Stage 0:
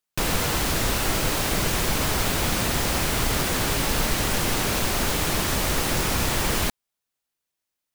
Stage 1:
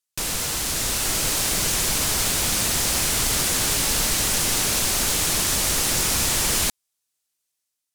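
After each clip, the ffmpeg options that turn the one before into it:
-af "equalizer=f=8300:t=o:w=2.4:g=12.5,dynaudnorm=f=620:g=3:m=3.76,volume=0.398"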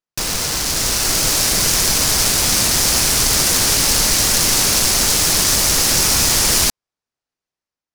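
-af "adynamicsmooth=sensitivity=5.5:basefreq=1800,aexciter=amount=2.9:drive=1.2:freq=4600,volume=1.88"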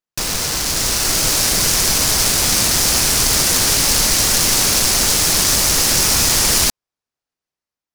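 -af "acrusher=bits=3:mode=log:mix=0:aa=0.000001"

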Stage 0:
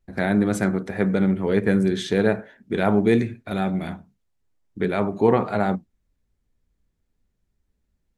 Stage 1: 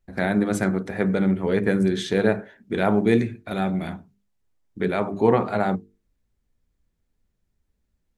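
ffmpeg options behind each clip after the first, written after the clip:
-af "bandreject=f=50:t=h:w=6,bandreject=f=100:t=h:w=6,bandreject=f=150:t=h:w=6,bandreject=f=200:t=h:w=6,bandreject=f=250:t=h:w=6,bandreject=f=300:t=h:w=6,bandreject=f=350:t=h:w=6,bandreject=f=400:t=h:w=6,bandreject=f=450:t=h:w=6"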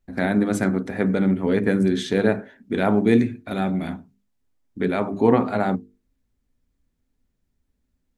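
-af "equalizer=f=260:t=o:w=0.21:g=11.5"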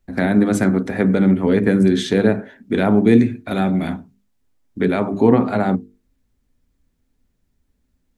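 -filter_complex "[0:a]acrossover=split=390[s0][s1];[s1]acompressor=threshold=0.0447:ratio=2[s2];[s0][s2]amix=inputs=2:normalize=0,volume=1.88"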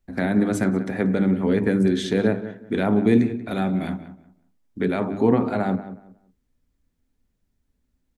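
-filter_complex "[0:a]asplit=2[s0][s1];[s1]adelay=184,lowpass=f=2100:p=1,volume=0.224,asplit=2[s2][s3];[s3]adelay=184,lowpass=f=2100:p=1,volume=0.24,asplit=2[s4][s5];[s5]adelay=184,lowpass=f=2100:p=1,volume=0.24[s6];[s0][s2][s4][s6]amix=inputs=4:normalize=0,volume=0.562"

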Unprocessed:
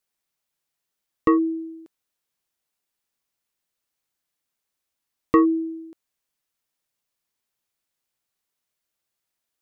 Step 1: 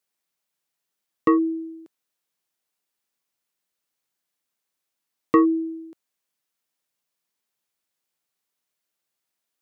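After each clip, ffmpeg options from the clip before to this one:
-af "highpass=130"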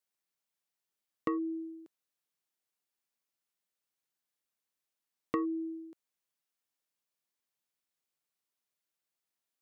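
-af "acompressor=threshold=0.0631:ratio=3,volume=0.422"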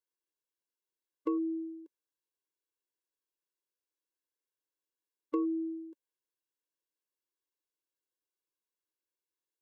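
-af "lowshelf=f=430:g=11,bandreject=f=2200:w=12,afftfilt=real='re*eq(mod(floor(b*sr/1024/290),2),1)':imag='im*eq(mod(floor(b*sr/1024/290),2),1)':win_size=1024:overlap=0.75,volume=0.562"

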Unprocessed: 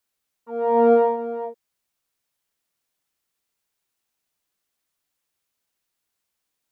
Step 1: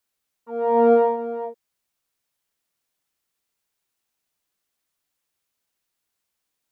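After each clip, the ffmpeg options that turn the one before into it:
-af anull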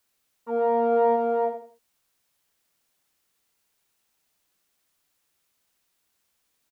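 -af "areverse,acompressor=threshold=0.0708:ratio=12,areverse,aecho=1:1:83|166|249:0.355|0.0993|0.0278,volume=1.88"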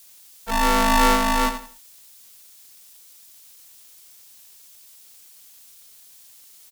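-af "aexciter=amount=5.7:drive=7.6:freq=2600,aeval=exprs='val(0)*sgn(sin(2*PI*440*n/s))':c=same,volume=1.58"

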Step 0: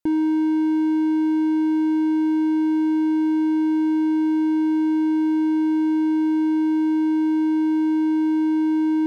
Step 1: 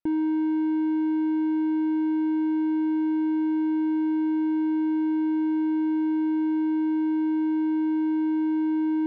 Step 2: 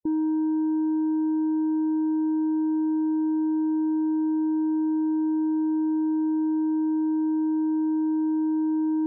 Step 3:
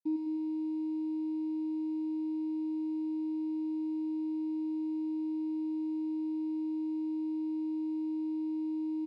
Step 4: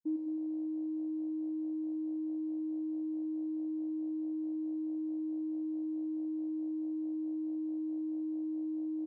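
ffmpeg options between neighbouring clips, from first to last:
-af "lowpass=2900,volume=0.596"
-af "afftdn=nr=30:nf=-32"
-filter_complex "[0:a]acrusher=bits=7:dc=4:mix=0:aa=0.000001,asplit=3[s0][s1][s2];[s0]bandpass=f=300:t=q:w=8,volume=1[s3];[s1]bandpass=f=870:t=q:w=8,volume=0.501[s4];[s2]bandpass=f=2240:t=q:w=8,volume=0.355[s5];[s3][s4][s5]amix=inputs=3:normalize=0,aecho=1:1:104|208|312|416|520|624|728:0.562|0.304|0.164|0.0885|0.0478|0.0258|0.0139,volume=0.596"
-af "afwtdn=0.0126,volume=0.794"

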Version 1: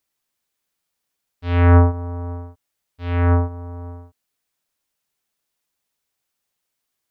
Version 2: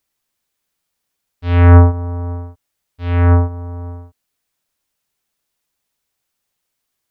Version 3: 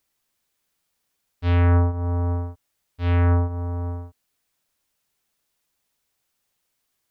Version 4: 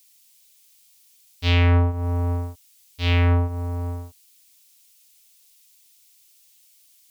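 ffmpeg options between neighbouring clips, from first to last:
-af "lowshelf=f=110:g=4.5,volume=1.41"
-af "acompressor=threshold=0.126:ratio=4"
-af "aexciter=amount=6.5:drive=3.9:freq=2200"

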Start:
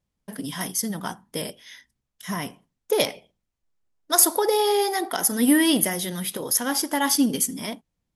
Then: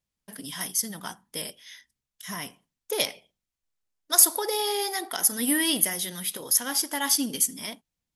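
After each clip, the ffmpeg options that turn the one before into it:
-af "tiltshelf=f=1400:g=-5,volume=0.596"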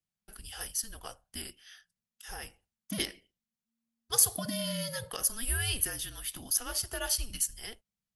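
-af "afreqshift=-230,volume=0.447"

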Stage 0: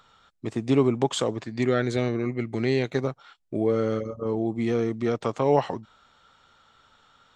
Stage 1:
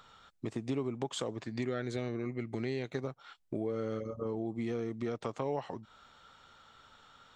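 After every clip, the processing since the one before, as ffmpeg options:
-af "acompressor=threshold=0.0158:ratio=3"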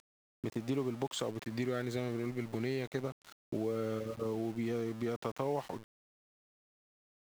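-af "aeval=exprs='val(0)*gte(abs(val(0)),0.00447)':c=same"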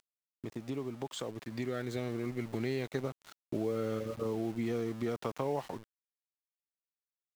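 -af "dynaudnorm=f=330:g=11:m=1.88,volume=0.631"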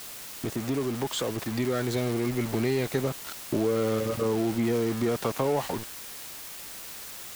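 -af "aeval=exprs='val(0)+0.5*0.0188*sgn(val(0))':c=same,volume=1.88"

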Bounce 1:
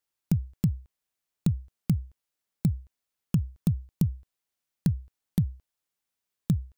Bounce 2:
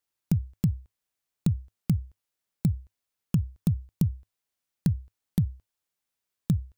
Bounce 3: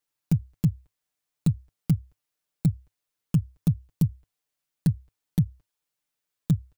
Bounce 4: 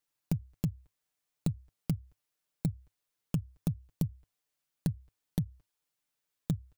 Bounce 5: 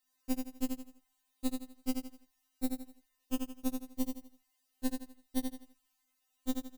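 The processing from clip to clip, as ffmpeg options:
-af "equalizer=f=100:t=o:w=0.24:g=3"
-af "aecho=1:1:6.7:0.7,volume=0.891"
-af "acompressor=threshold=0.0447:ratio=6,volume=0.891"
-filter_complex "[0:a]asplit=2[s0][s1];[s1]aecho=0:1:83|166|249|332:0.562|0.191|0.065|0.0221[s2];[s0][s2]amix=inputs=2:normalize=0,afftfilt=real='re*3.46*eq(mod(b,12),0)':imag='im*3.46*eq(mod(b,12),0)':win_size=2048:overlap=0.75,volume=2.37"

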